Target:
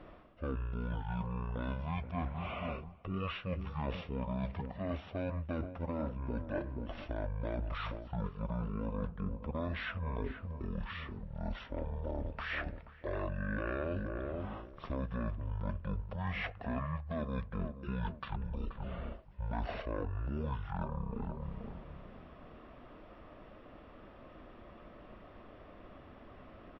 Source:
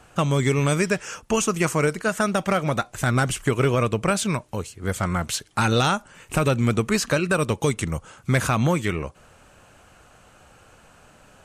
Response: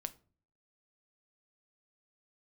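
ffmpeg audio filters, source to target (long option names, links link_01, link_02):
-filter_complex "[0:a]asplit=2[link_01][link_02];[link_02]adelay=205,lowpass=frequency=1700:poles=1,volume=-13dB,asplit=2[link_03][link_04];[link_04]adelay=205,lowpass=frequency=1700:poles=1,volume=0.32,asplit=2[link_05][link_06];[link_06]adelay=205,lowpass=frequency=1700:poles=1,volume=0.32[link_07];[link_01][link_03][link_05][link_07]amix=inputs=4:normalize=0,asetrate=18846,aresample=44100,areverse,acompressor=threshold=-34dB:ratio=6,areverse,highshelf=frequency=2900:width_type=q:width=1.5:gain=-12.5,volume=-1.5dB"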